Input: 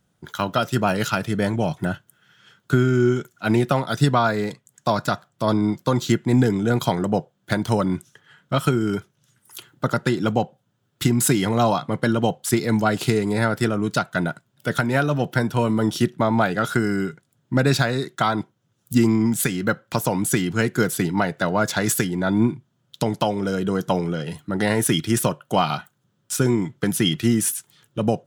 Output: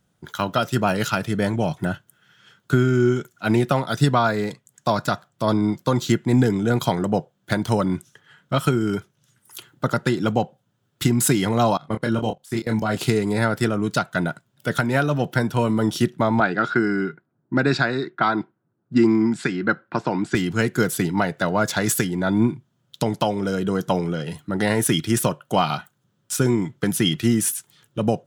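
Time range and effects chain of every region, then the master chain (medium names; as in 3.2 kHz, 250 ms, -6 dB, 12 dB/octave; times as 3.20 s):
11.77–12.96 s: level held to a coarse grid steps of 23 dB + doubling 27 ms -6 dB
16.40–20.35 s: level-controlled noise filter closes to 690 Hz, open at -16 dBFS + cabinet simulation 160–6400 Hz, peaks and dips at 340 Hz +5 dB, 520 Hz -5 dB, 1.5 kHz +4 dB, 3.2 kHz -6 dB, 6.2 kHz -10 dB
whole clip: none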